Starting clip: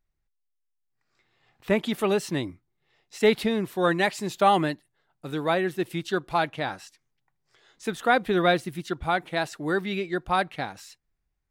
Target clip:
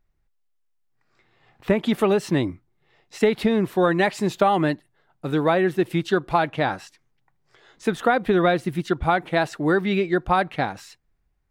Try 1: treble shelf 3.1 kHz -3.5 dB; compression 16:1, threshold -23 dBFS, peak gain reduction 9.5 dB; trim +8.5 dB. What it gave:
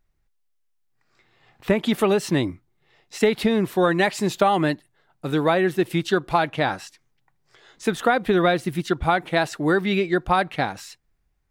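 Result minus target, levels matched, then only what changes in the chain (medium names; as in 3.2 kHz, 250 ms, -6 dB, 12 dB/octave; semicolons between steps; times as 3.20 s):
8 kHz band +5.0 dB
change: treble shelf 3.1 kHz -9.5 dB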